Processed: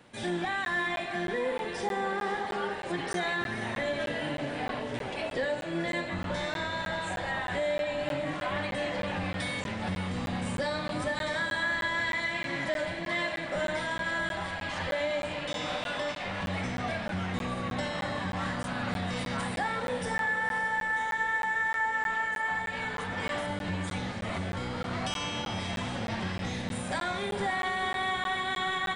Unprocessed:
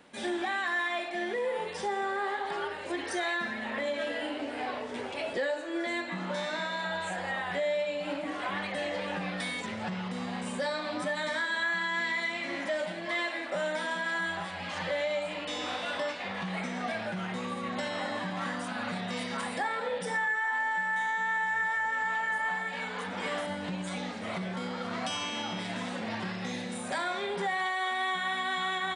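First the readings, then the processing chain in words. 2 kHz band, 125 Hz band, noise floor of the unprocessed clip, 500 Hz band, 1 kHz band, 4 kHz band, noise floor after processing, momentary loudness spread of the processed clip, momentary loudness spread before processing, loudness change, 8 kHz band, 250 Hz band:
+0.5 dB, +6.5 dB, -38 dBFS, +0.5 dB, +0.5 dB, +0.5 dB, -37 dBFS, 5 LU, 7 LU, +0.5 dB, +0.5 dB, +1.5 dB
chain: octave divider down 1 oct, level -1 dB; echo that smears into a reverb 517 ms, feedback 56%, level -9.5 dB; crackling interface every 0.31 s, samples 512, zero, from 0.65 s

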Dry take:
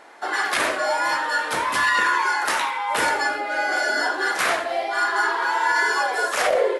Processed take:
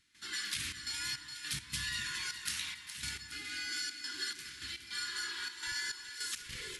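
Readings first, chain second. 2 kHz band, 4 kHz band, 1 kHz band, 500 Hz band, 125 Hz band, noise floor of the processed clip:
-20.0 dB, -7.5 dB, -31.0 dB, -37.5 dB, no reading, -52 dBFS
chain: Chebyshev band-stop 110–3600 Hz, order 2; bass shelf 370 Hz +10 dB; compression, threshold -33 dBFS, peak gain reduction 8.5 dB; trance gate ".xxxx.xx..x" 104 bpm -12 dB; two-band feedback delay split 1.5 kHz, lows 183 ms, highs 415 ms, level -10 dB; trim -1.5 dB

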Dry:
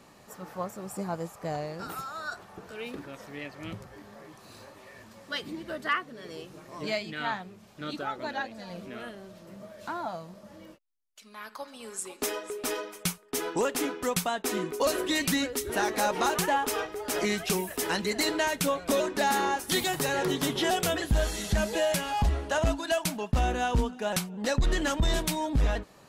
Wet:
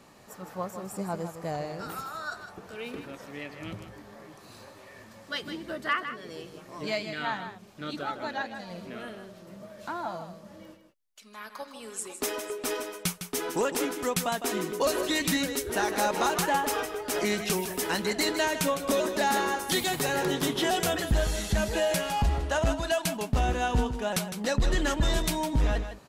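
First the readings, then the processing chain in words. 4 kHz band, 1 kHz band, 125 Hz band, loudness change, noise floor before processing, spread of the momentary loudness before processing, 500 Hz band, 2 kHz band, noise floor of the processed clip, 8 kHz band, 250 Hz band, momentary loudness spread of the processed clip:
+0.5 dB, +0.5 dB, +0.5 dB, +0.5 dB, -55 dBFS, 17 LU, +0.5 dB, +0.5 dB, -52 dBFS, +0.5 dB, +0.5 dB, 17 LU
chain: delay 157 ms -9.5 dB

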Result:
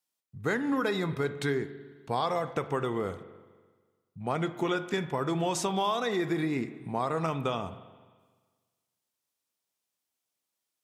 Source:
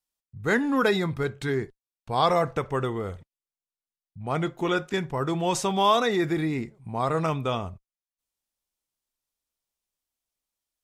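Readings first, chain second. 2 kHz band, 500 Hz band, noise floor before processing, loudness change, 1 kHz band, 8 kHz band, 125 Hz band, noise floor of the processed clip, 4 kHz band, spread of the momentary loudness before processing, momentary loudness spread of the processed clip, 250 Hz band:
-5.0 dB, -4.5 dB, under -85 dBFS, -5.0 dB, -5.5 dB, -3.0 dB, -4.5 dB, under -85 dBFS, -5.5 dB, 11 LU, 8 LU, -3.5 dB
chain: high-pass 140 Hz 12 dB/octave; compression, threshold -28 dBFS, peak gain reduction 12 dB; spring tank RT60 1.5 s, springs 42/49 ms, chirp 30 ms, DRR 12.5 dB; trim +2 dB

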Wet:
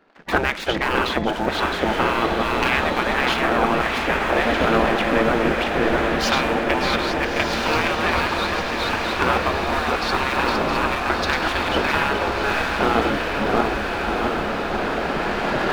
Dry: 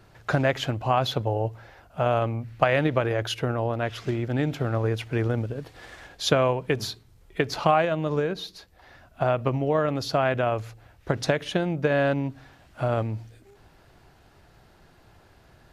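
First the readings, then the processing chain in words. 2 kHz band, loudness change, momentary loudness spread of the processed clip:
+12.0 dB, +5.5 dB, 4 LU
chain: backward echo that repeats 332 ms, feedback 48%, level -2.5 dB; recorder AGC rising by 9.8 dB/s; low-pass 2.9 kHz 12 dB/octave; peaking EQ 74 Hz +12.5 dB 1.3 oct; de-hum 170.6 Hz, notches 39; waveshaping leveller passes 2; spectral gate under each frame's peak -15 dB weak; on a send: echo that smears into a reverb 1342 ms, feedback 62%, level -4 dB; on the sum: trim +2.5 dB

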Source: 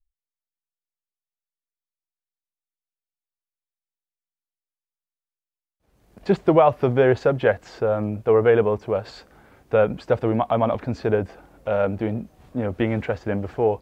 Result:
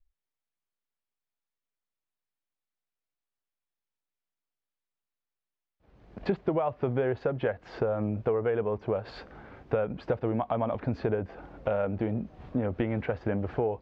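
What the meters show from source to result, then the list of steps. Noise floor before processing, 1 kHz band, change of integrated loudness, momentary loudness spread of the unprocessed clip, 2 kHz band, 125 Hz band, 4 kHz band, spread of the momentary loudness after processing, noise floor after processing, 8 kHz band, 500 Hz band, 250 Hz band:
under -85 dBFS, -10.0 dB, -9.0 dB, 11 LU, -10.0 dB, -6.5 dB, -10.0 dB, 7 LU, under -85 dBFS, no reading, -9.5 dB, -7.0 dB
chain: compression 6:1, threshold -30 dBFS, peak gain reduction 18 dB; distance through air 230 m; trim +4.5 dB

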